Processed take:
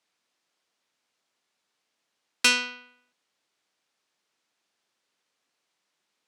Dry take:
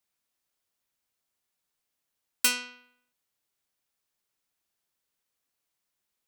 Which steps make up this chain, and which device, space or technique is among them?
public-address speaker with an overloaded transformer (core saturation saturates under 3800 Hz; BPF 200–5800 Hz); gain +9 dB

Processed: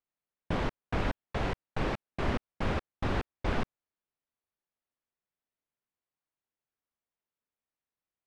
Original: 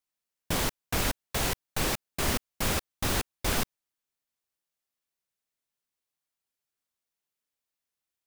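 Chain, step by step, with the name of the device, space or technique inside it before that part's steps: phone in a pocket (LPF 3200 Hz 12 dB/oct; high shelf 2300 Hz -10 dB)

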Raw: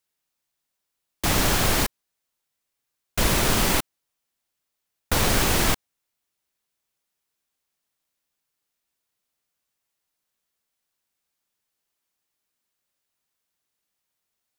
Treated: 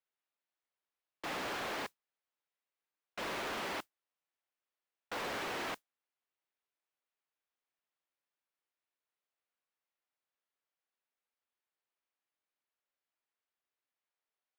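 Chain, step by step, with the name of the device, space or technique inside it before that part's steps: carbon microphone (BPF 360–2800 Hz; soft clip -28 dBFS, distortion -10 dB; modulation noise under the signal 18 dB); gain -7.5 dB

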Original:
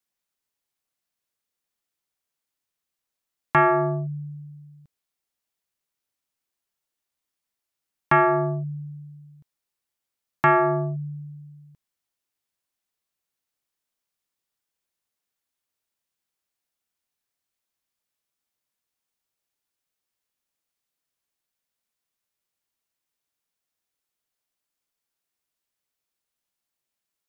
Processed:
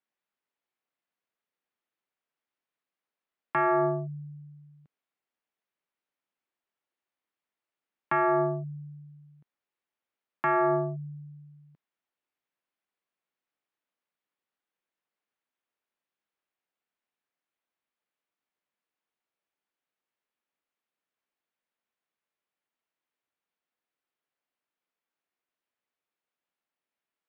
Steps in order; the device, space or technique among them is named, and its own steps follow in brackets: DJ mixer with the lows and highs turned down (three-band isolator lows -16 dB, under 170 Hz, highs -21 dB, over 3200 Hz; limiter -17 dBFS, peak gain reduction 9 dB)

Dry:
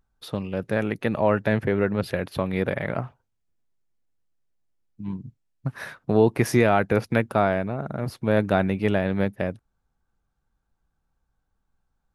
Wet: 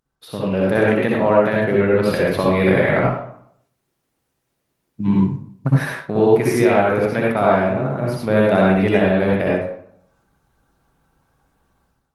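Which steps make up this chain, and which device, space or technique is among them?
far-field microphone of a smart speaker (reverb RT60 0.60 s, pre-delay 57 ms, DRR -4 dB; HPF 160 Hz 6 dB/oct; AGC gain up to 15.5 dB; gain -1 dB; Opus 24 kbps 48000 Hz)

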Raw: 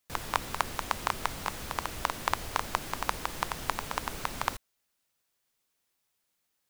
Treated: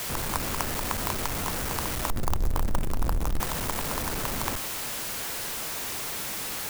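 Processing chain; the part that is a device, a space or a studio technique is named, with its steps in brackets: 2.1–3.4 tilt -4.5 dB/oct; early CD player with a faulty converter (zero-crossing step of -20 dBFS; clock jitter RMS 0.074 ms); gain -5 dB

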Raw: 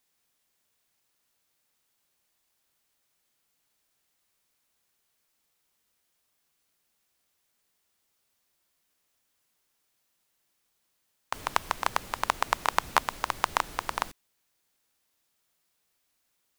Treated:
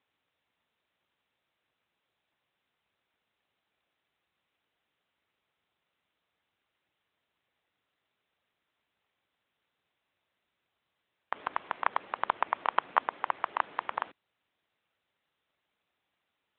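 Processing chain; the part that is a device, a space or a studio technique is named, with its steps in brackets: telephone (BPF 310–3200 Hz; AMR-NB 12.2 kbps 8000 Hz)

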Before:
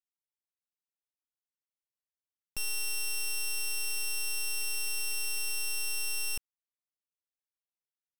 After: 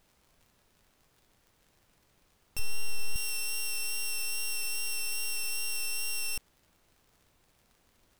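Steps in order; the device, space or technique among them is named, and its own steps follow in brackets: vinyl LP (wow and flutter 15 cents; crackle; pink noise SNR 34 dB); 2.59–3.16 tilt -2 dB/oct

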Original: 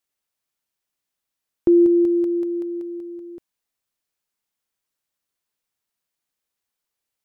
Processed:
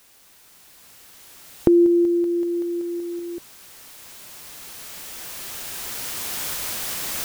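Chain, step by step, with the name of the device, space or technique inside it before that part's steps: cheap recorder with automatic gain (white noise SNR 28 dB; recorder AGC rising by 6.2 dB/s); gain -1 dB

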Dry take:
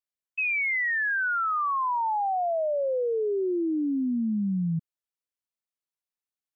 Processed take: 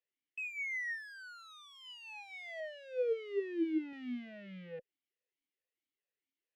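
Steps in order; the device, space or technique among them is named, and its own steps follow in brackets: talk box (tube stage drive 46 dB, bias 0.35; vowel sweep e-i 2.3 Hz); 2.6–3.93 tilt -2 dB/oct; gain +15.5 dB

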